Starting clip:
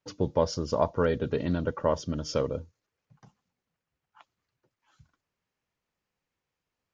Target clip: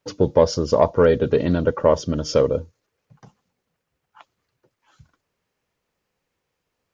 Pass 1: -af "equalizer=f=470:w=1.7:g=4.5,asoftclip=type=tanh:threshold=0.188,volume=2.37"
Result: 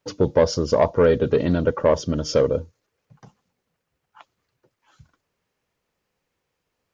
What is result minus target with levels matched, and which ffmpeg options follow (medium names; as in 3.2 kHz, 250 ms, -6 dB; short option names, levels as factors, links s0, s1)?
saturation: distortion +10 dB
-af "equalizer=f=470:w=1.7:g=4.5,asoftclip=type=tanh:threshold=0.398,volume=2.37"